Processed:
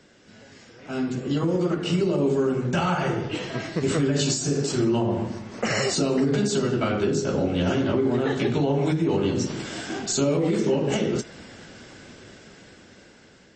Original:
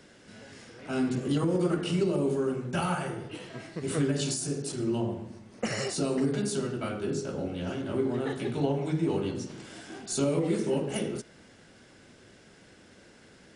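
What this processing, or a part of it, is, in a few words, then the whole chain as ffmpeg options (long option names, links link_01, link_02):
low-bitrate web radio: -filter_complex "[0:a]asettb=1/sr,asplit=3[link_01][link_02][link_03];[link_01]atrim=end=4.554[link_04];[link_02]atrim=start=4.55:end=5.82,asetpts=PTS-STARTPTS,afade=type=in:duration=0.004:curve=qsin,afade=type=out:start_time=1.266:duration=0.004:curve=qsin,equalizer=frequency=1200:width=0.58:gain=4[link_05];[link_03]atrim=start=5.816[link_06];[link_04][link_05]acrossfade=duration=0.004:curve1=hsin:curve2=qsin[link_07];[link_07][link_06]acrossfade=duration=0.004:curve1=qsin:curve2=hsin,dynaudnorm=framelen=610:gausssize=7:maxgain=13.5dB,alimiter=limit=-13.5dB:level=0:latency=1:release=177" -ar 24000 -c:a libmp3lame -b:a 32k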